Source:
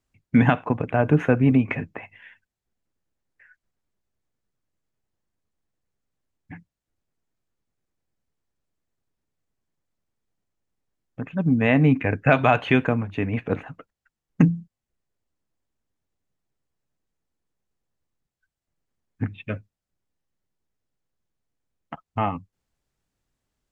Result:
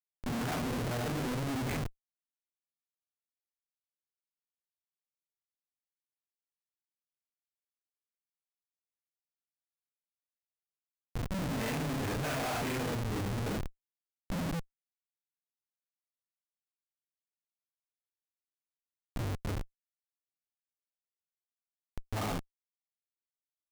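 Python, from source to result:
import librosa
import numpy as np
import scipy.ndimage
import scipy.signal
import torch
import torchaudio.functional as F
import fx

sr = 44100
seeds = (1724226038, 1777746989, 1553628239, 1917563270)

y = fx.phase_scramble(x, sr, seeds[0], window_ms=200)
y = scipy.signal.sosfilt(scipy.signal.butter(4, 48.0, 'highpass', fs=sr, output='sos'), y)
y = fx.schmitt(y, sr, flips_db=-28.5)
y = y * 10.0 ** (-6.0 / 20.0)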